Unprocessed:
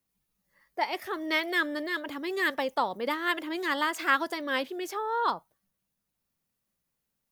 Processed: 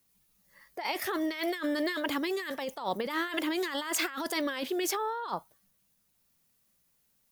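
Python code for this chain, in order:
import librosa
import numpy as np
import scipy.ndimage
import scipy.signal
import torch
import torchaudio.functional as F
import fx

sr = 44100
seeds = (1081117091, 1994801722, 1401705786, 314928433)

y = fx.high_shelf(x, sr, hz=2900.0, db=6.0)
y = fx.over_compress(y, sr, threshold_db=-34.0, ratio=-1.0)
y = F.gain(torch.from_numpy(y), 1.0).numpy()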